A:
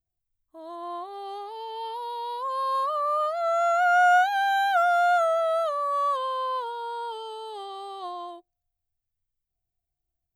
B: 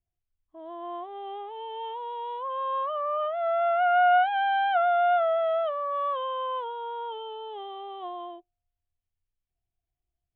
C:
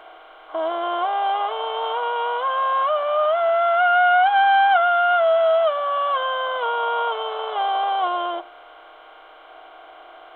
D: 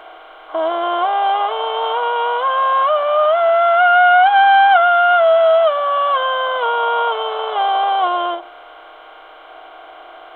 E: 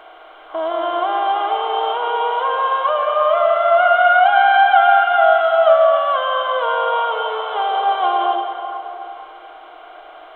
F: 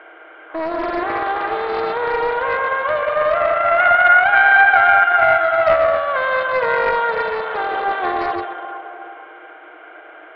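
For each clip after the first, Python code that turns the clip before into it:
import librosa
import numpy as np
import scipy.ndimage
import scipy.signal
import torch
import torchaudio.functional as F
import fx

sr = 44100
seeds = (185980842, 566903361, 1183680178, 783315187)

y1 = scipy.signal.sosfilt(scipy.signal.butter(16, 3400.0, 'lowpass', fs=sr, output='sos'), x)
y1 = fx.peak_eq(y1, sr, hz=1300.0, db=-5.0, octaves=0.73)
y2 = fx.bin_compress(y1, sr, power=0.4)
y2 = y2 + 0.48 * np.pad(y2, (int(6.4 * sr / 1000.0), 0))[:len(y2)]
y2 = y2 * 10.0 ** (5.0 / 20.0)
y3 = fx.end_taper(y2, sr, db_per_s=160.0)
y3 = y3 * 10.0 ** (5.5 / 20.0)
y4 = fx.rev_freeverb(y3, sr, rt60_s=3.1, hf_ratio=0.4, predelay_ms=110, drr_db=3.0)
y4 = y4 * 10.0 ** (-3.5 / 20.0)
y5 = fx.cabinet(y4, sr, low_hz=310.0, low_slope=12, high_hz=2500.0, hz=(320.0, 480.0, 730.0, 1100.0, 1600.0, 2200.0), db=(8, 3, -7, -7, 8, 4))
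y5 = fx.doppler_dist(y5, sr, depth_ms=0.35)
y5 = y5 * 10.0 ** (1.0 / 20.0)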